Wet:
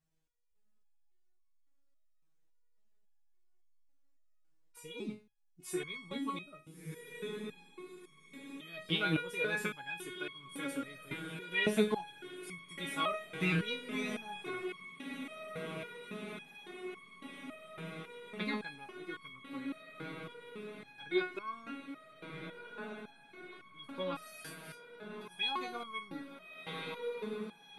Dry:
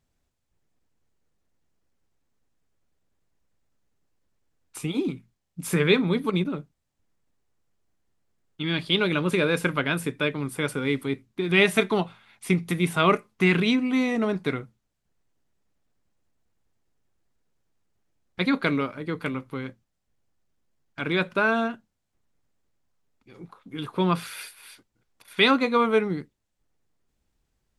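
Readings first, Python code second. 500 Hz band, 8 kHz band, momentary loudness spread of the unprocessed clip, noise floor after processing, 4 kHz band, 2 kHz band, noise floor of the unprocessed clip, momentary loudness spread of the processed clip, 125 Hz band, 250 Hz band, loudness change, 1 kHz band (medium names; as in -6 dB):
-13.0 dB, -10.0 dB, 16 LU, -68 dBFS, -10.5 dB, -11.5 dB, -78 dBFS, 16 LU, -15.0 dB, -14.0 dB, -15.0 dB, -12.5 dB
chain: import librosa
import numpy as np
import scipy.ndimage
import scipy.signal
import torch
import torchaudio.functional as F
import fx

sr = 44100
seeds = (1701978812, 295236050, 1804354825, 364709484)

y = fx.echo_diffused(x, sr, ms=1366, feedback_pct=77, wet_db=-11.0)
y = fx.resonator_held(y, sr, hz=3.6, low_hz=160.0, high_hz=1100.0)
y = y * librosa.db_to_amplitude(3.5)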